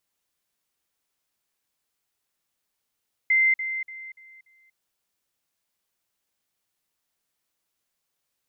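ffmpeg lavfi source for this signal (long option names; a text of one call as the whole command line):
ffmpeg -f lavfi -i "aevalsrc='pow(10,(-16.5-10*floor(t/0.29))/20)*sin(2*PI*2080*t)*clip(min(mod(t,0.29),0.24-mod(t,0.29))/0.005,0,1)':duration=1.45:sample_rate=44100" out.wav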